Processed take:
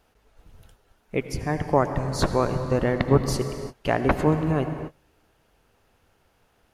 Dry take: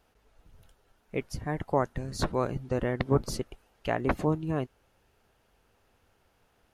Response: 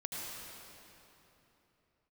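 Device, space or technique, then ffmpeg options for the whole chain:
keyed gated reverb: -filter_complex "[0:a]asplit=3[s0][s1][s2];[1:a]atrim=start_sample=2205[s3];[s1][s3]afir=irnorm=-1:irlink=0[s4];[s2]apad=whole_len=297116[s5];[s4][s5]sidechaingate=range=0.0224:threshold=0.00112:ratio=16:detection=peak,volume=0.501[s6];[s0][s6]amix=inputs=2:normalize=0,volume=1.5"

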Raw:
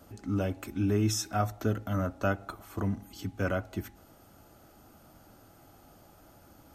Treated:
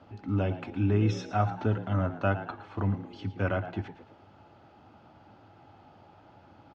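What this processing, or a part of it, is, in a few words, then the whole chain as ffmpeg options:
frequency-shifting delay pedal into a guitar cabinet: -filter_complex "[0:a]asplit=5[s0][s1][s2][s3][s4];[s1]adelay=112,afreqshift=75,volume=0.224[s5];[s2]adelay=224,afreqshift=150,volume=0.0923[s6];[s3]adelay=336,afreqshift=225,volume=0.0376[s7];[s4]adelay=448,afreqshift=300,volume=0.0155[s8];[s0][s5][s6][s7][s8]amix=inputs=5:normalize=0,highpass=89,equalizer=f=99:t=q:w=4:g=7,equalizer=f=870:t=q:w=4:g=7,equalizer=f=2600:t=q:w=4:g=3,lowpass=f=4000:w=0.5412,lowpass=f=4000:w=1.3066"

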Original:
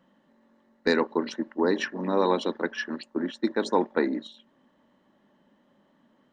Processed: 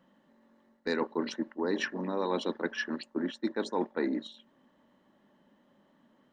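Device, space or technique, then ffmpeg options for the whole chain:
compression on the reversed sound: -af "areverse,acompressor=threshold=0.0562:ratio=6,areverse,volume=0.841"

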